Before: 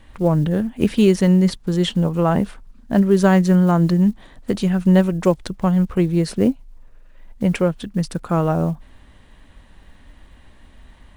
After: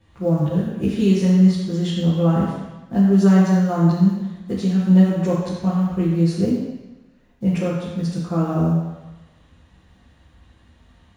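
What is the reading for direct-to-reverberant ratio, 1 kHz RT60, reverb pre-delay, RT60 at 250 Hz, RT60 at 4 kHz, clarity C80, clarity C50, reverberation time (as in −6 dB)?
−9.5 dB, 1.1 s, 3 ms, 1.0 s, 1.1 s, 1.5 dB, −0.5 dB, 1.1 s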